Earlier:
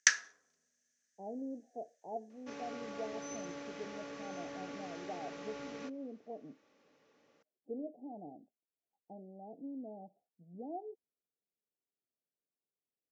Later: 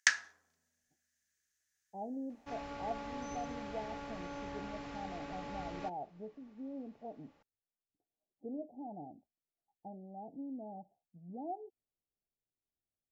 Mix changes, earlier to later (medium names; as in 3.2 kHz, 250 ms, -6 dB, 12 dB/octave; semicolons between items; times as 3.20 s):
speech: entry +0.75 s; master: remove cabinet simulation 190–8800 Hz, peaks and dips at 460 Hz +5 dB, 860 Hz -8 dB, 6 kHz +7 dB